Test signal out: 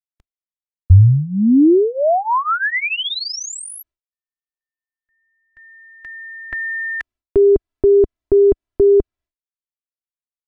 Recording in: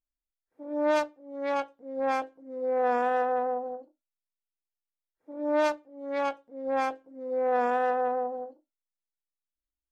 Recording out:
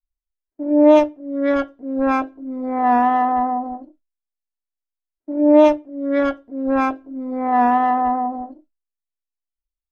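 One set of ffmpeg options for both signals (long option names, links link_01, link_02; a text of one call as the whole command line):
ffmpeg -i in.wav -af "aemphasis=mode=reproduction:type=riaa,aecho=1:1:3:0.87,agate=range=-33dB:threshold=-53dB:ratio=3:detection=peak,volume=8dB" out.wav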